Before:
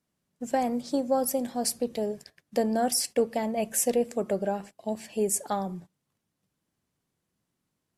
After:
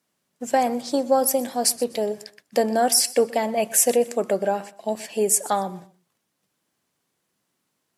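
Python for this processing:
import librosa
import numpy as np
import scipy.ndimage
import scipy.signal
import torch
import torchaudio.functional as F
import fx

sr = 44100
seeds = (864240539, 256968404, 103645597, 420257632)

p1 = fx.highpass(x, sr, hz=450.0, slope=6)
p2 = p1 + fx.echo_feedback(p1, sr, ms=124, feedback_pct=26, wet_db=-19.5, dry=0)
y = p2 * librosa.db_to_amplitude(8.5)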